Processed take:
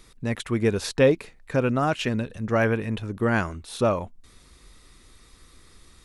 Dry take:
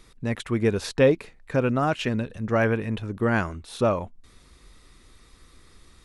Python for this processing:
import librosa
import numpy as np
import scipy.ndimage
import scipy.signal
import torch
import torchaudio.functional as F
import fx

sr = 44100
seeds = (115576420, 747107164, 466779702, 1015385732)

y = fx.high_shelf(x, sr, hz=4800.0, db=4.5)